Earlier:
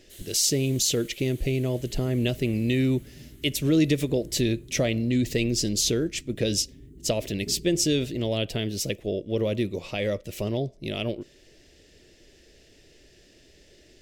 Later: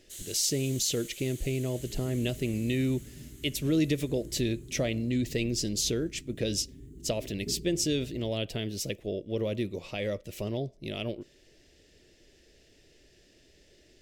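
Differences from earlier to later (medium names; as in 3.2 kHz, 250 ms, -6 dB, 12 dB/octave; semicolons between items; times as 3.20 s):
speech -5.0 dB; first sound: add peaking EQ 7 kHz +10 dB 0.83 oct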